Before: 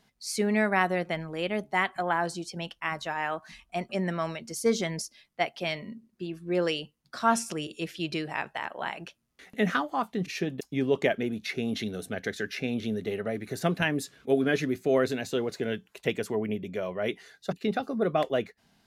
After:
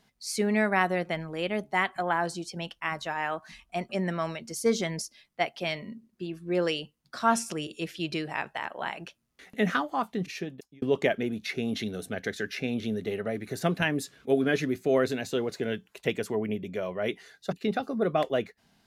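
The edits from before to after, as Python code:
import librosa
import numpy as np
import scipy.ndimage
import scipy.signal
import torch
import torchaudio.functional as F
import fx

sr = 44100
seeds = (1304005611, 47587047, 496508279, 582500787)

y = fx.edit(x, sr, fx.fade_out_span(start_s=10.14, length_s=0.68), tone=tone)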